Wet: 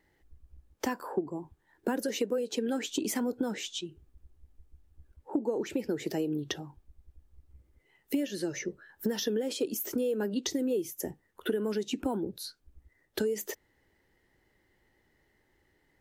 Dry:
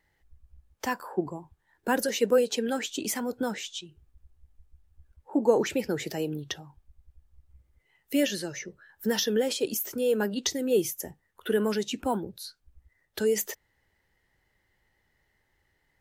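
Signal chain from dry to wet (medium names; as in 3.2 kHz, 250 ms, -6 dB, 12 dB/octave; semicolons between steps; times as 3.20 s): peaking EQ 320 Hz +9.5 dB 1.3 oct; compression 12:1, threshold -27 dBFS, peak gain reduction 17 dB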